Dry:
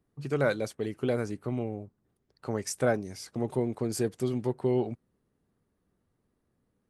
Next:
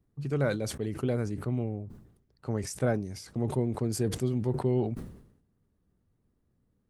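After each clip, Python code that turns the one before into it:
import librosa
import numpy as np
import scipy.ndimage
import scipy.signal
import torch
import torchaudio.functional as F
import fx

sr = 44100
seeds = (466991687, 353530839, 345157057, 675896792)

y = fx.low_shelf(x, sr, hz=210.0, db=12.0)
y = fx.sustainer(y, sr, db_per_s=78.0)
y = y * librosa.db_to_amplitude(-5.0)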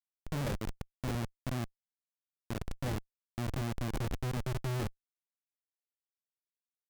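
y = fx.env_flanger(x, sr, rest_ms=5.9, full_db=-23.5)
y = fx.schmitt(y, sr, flips_db=-29.5)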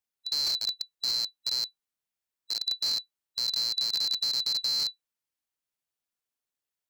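y = fx.band_swap(x, sr, width_hz=4000)
y = y * librosa.db_to_amplitude(5.5)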